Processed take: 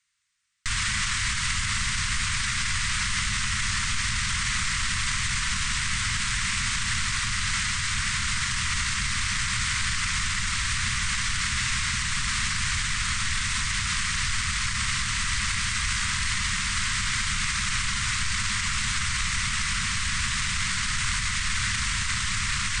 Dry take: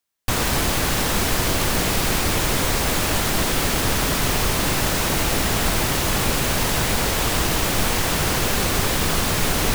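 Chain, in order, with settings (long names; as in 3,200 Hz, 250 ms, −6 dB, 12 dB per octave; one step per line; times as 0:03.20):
hum removal 45.91 Hz, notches 3
in parallel at −6.5 dB: wrap-around overflow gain 17.5 dB
on the sum: low-shelf EQ 170 Hz −4 dB
on a send: delay that swaps between a low-pass and a high-pass 351 ms, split 1,100 Hz, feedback 56%, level −3.5 dB
on the sum: speech leveller within 4 dB
wrong playback speed 78 rpm record played at 33 rpm
inverse Chebyshev band-stop filter 320–700 Hz, stop band 50 dB
brickwall limiter −14 dBFS, peak gain reduction 6.5 dB
thirty-one-band graphic EQ 160 Hz −11 dB, 1,000 Hz +3 dB, 2,000 Hz +6 dB, 16,000 Hz +11 dB
level −3.5 dB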